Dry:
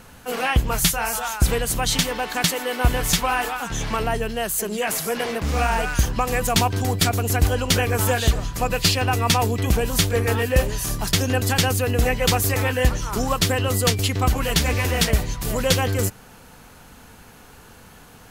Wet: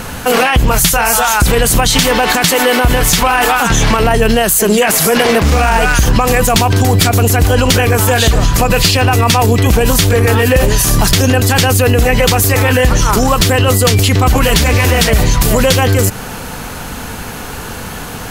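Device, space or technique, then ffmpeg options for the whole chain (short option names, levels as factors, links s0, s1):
loud club master: -af "acompressor=threshold=0.0891:ratio=2.5,asoftclip=type=hard:threshold=0.211,alimiter=level_in=13.3:limit=0.891:release=50:level=0:latency=1,volume=0.891"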